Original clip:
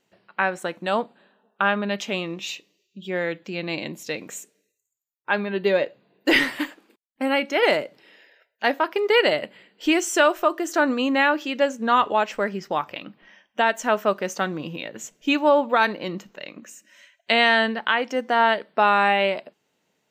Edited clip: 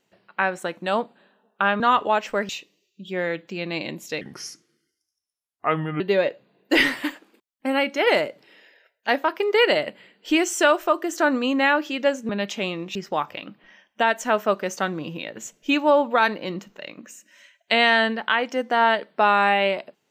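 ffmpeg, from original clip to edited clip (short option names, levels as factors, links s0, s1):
-filter_complex "[0:a]asplit=7[s0][s1][s2][s3][s4][s5][s6];[s0]atrim=end=1.802[s7];[s1]atrim=start=11.848:end=12.542[s8];[s2]atrim=start=2.458:end=4.184[s9];[s3]atrim=start=4.18:end=5.56,asetpts=PTS-STARTPTS,asetrate=33957,aresample=44100,atrim=end_sample=79036,asetpts=PTS-STARTPTS[s10];[s4]atrim=start=5.556:end=11.852[s11];[s5]atrim=start=1.798:end=2.462[s12];[s6]atrim=start=12.538[s13];[s7][s8]acrossfade=d=0.004:c1=hsin:c2=hsin[s14];[s14][s9]acrossfade=d=0.004:c1=hsin:c2=hsin[s15];[s15][s10]acrossfade=d=0.004:c1=hsin:c2=hsin[s16];[s16][s11]acrossfade=d=0.004:c1=hsin:c2=hsin[s17];[s17][s12]acrossfade=d=0.004:c1=hsin:c2=hsin[s18];[s18][s13]acrossfade=d=0.004:c1=hsin:c2=hsin"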